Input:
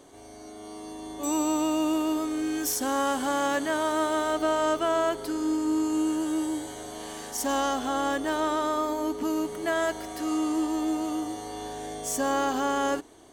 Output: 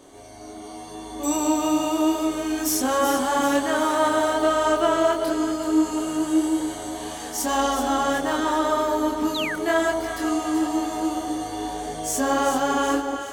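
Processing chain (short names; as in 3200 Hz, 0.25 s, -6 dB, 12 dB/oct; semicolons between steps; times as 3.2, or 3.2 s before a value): chorus voices 2, 0.85 Hz, delay 24 ms, depth 3.3 ms; echo with dull and thin repeats by turns 0.191 s, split 1000 Hz, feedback 67%, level -5 dB; painted sound fall, 9.34–9.56, 1400–4300 Hz -36 dBFS; gain +7 dB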